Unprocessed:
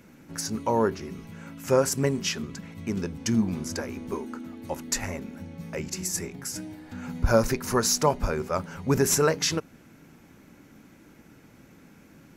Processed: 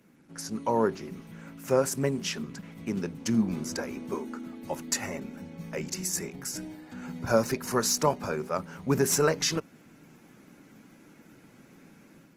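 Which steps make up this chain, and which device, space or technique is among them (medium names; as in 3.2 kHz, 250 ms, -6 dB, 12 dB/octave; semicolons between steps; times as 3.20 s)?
video call (high-pass 120 Hz 24 dB/octave; level rider gain up to 6 dB; trim -7 dB; Opus 20 kbps 48 kHz)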